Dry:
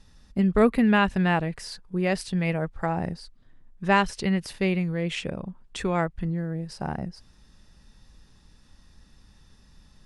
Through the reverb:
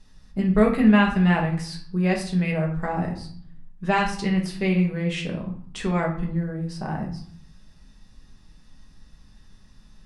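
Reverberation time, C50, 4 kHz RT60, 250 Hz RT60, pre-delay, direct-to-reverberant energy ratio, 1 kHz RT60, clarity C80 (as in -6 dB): 0.55 s, 7.5 dB, 0.40 s, 0.80 s, 5 ms, -1.0 dB, 0.60 s, 11.5 dB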